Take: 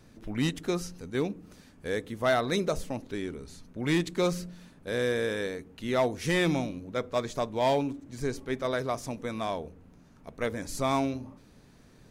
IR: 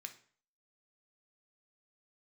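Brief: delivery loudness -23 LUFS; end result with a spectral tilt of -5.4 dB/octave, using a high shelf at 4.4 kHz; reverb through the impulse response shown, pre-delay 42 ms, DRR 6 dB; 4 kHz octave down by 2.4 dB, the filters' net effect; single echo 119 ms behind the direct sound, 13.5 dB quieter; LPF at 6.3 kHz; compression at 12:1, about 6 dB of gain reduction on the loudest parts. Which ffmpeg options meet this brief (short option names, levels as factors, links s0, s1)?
-filter_complex "[0:a]lowpass=6300,equalizer=f=4000:t=o:g=-5.5,highshelf=f=4400:g=6.5,acompressor=threshold=0.0447:ratio=12,aecho=1:1:119:0.211,asplit=2[s0][s1];[1:a]atrim=start_sample=2205,adelay=42[s2];[s1][s2]afir=irnorm=-1:irlink=0,volume=0.841[s3];[s0][s3]amix=inputs=2:normalize=0,volume=3.55"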